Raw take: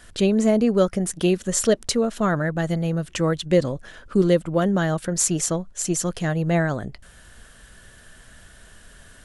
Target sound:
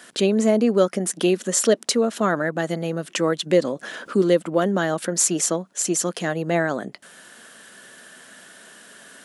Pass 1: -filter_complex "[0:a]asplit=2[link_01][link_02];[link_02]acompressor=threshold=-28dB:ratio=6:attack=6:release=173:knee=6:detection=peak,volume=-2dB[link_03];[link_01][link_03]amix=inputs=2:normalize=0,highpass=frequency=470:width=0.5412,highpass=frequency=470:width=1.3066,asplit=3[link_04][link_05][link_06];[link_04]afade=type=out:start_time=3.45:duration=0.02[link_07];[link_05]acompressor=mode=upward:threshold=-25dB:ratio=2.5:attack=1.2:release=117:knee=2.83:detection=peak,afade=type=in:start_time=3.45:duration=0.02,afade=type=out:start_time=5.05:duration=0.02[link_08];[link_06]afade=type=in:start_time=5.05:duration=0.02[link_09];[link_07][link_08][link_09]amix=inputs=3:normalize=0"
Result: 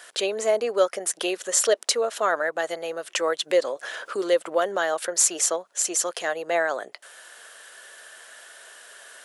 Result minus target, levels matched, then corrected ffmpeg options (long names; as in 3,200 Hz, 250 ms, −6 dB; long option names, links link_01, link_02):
250 Hz band −12.0 dB
-filter_complex "[0:a]asplit=2[link_01][link_02];[link_02]acompressor=threshold=-28dB:ratio=6:attack=6:release=173:knee=6:detection=peak,volume=-2dB[link_03];[link_01][link_03]amix=inputs=2:normalize=0,highpass=frequency=210:width=0.5412,highpass=frequency=210:width=1.3066,asplit=3[link_04][link_05][link_06];[link_04]afade=type=out:start_time=3.45:duration=0.02[link_07];[link_05]acompressor=mode=upward:threshold=-25dB:ratio=2.5:attack=1.2:release=117:knee=2.83:detection=peak,afade=type=in:start_time=3.45:duration=0.02,afade=type=out:start_time=5.05:duration=0.02[link_08];[link_06]afade=type=in:start_time=5.05:duration=0.02[link_09];[link_07][link_08][link_09]amix=inputs=3:normalize=0"